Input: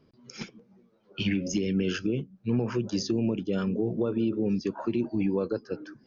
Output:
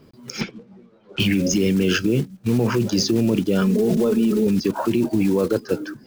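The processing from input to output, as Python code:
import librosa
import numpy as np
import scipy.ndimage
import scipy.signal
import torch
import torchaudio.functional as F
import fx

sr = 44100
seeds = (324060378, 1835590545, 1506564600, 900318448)

p1 = fx.block_float(x, sr, bits=5)
p2 = fx.lowpass(p1, sr, hz=4000.0, slope=12, at=(0.41, 1.2))
p3 = fx.comb(p2, sr, ms=4.7, depth=0.81, at=(3.61, 4.47))
p4 = fx.over_compress(p3, sr, threshold_db=-30.0, ratio=-1.0)
p5 = p3 + (p4 * 10.0 ** (3.0 / 20.0))
y = p5 * 10.0 ** (2.5 / 20.0)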